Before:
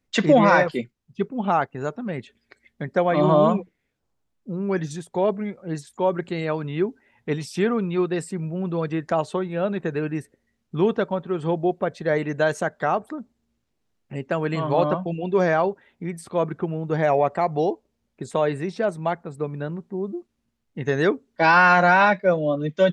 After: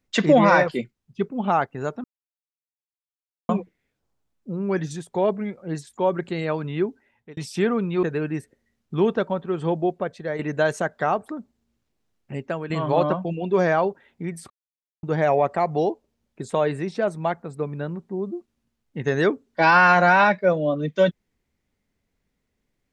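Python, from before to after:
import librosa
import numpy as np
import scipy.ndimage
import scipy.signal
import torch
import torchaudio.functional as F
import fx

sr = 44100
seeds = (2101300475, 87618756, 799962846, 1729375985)

y = fx.edit(x, sr, fx.silence(start_s=2.04, length_s=1.45),
    fx.fade_out_span(start_s=6.67, length_s=0.7, curve='qsin'),
    fx.cut(start_s=8.03, length_s=1.81),
    fx.fade_out_to(start_s=11.58, length_s=0.62, floor_db=-8.0),
    fx.fade_out_to(start_s=14.17, length_s=0.34, floor_db=-10.0),
    fx.silence(start_s=16.31, length_s=0.53), tone=tone)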